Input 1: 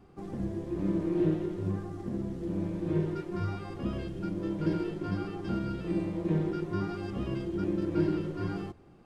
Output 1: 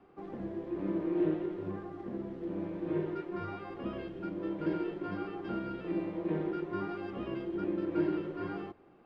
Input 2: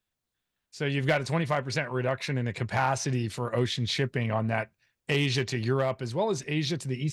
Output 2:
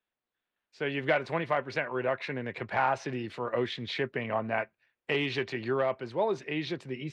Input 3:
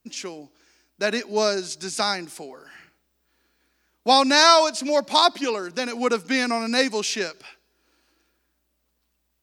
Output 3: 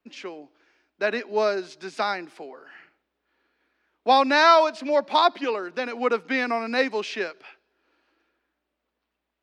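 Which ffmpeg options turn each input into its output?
ffmpeg -i in.wav -filter_complex "[0:a]acrossover=split=250 3500:gain=0.2 1 0.0708[link_01][link_02][link_03];[link_01][link_02][link_03]amix=inputs=3:normalize=0" out.wav

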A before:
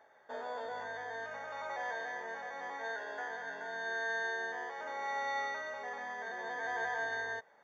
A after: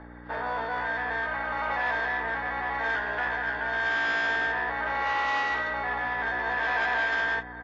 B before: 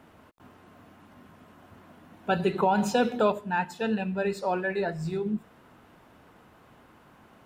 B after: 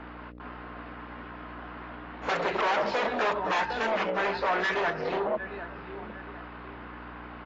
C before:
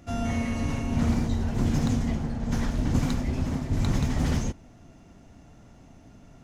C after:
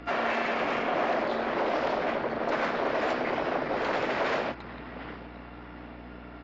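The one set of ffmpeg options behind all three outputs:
ffmpeg -i in.wav -filter_complex "[0:a]highpass=frequency=140:width=0.5412,highpass=frequency=140:width=1.3066,asplit=2[link_01][link_02];[link_02]adelay=756,lowpass=frequency=4100:poles=1,volume=-19dB,asplit=2[link_03][link_04];[link_04]adelay=756,lowpass=frequency=4100:poles=1,volume=0.33,asplit=2[link_05][link_06];[link_06]adelay=756,lowpass=frequency=4100:poles=1,volume=0.33[link_07];[link_01][link_03][link_05][link_07]amix=inputs=4:normalize=0,aresample=16000,volume=22dB,asoftclip=hard,volume=-22dB,aresample=44100,aeval=exprs='val(0)+0.00794*(sin(2*PI*60*n/s)+sin(2*PI*2*60*n/s)/2+sin(2*PI*3*60*n/s)/3+sin(2*PI*4*60*n/s)/4+sin(2*PI*5*60*n/s)/5)':channel_layout=same,acompressor=threshold=-30dB:ratio=2.5,equalizer=frequency=530:width_type=o:width=1.3:gain=-11,aresample=11025,aresample=44100,aeval=exprs='0.0631*sin(PI/2*3.98*val(0)/0.0631)':channel_layout=same,acrossover=split=350 2300:gain=0.0631 1 0.178[link_08][link_09][link_10];[link_08][link_09][link_10]amix=inputs=3:normalize=0,volume=3.5dB" -ar 16000 -c:a aac -b:a 24k out.aac

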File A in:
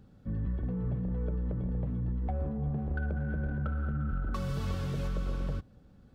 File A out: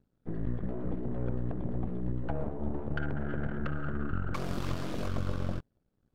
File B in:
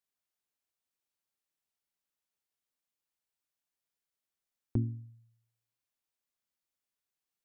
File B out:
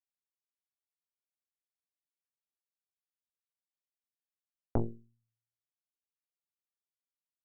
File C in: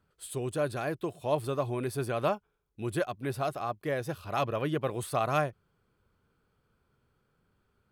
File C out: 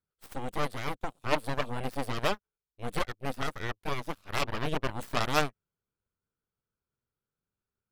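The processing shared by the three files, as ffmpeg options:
ffmpeg -i in.wav -af "aeval=exprs='0.188*(cos(1*acos(clip(val(0)/0.188,-1,1)))-cos(1*PI/2))+0.0596*(cos(3*acos(clip(val(0)/0.188,-1,1)))-cos(3*PI/2))+0.0188*(cos(8*acos(clip(val(0)/0.188,-1,1)))-cos(8*PI/2))':channel_layout=same,volume=6.5dB" out.wav

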